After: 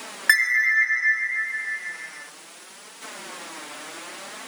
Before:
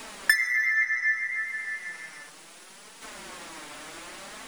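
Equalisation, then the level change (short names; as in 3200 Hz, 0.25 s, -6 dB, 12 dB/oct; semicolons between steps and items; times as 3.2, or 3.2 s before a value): HPF 190 Hz 12 dB/oct; +4.5 dB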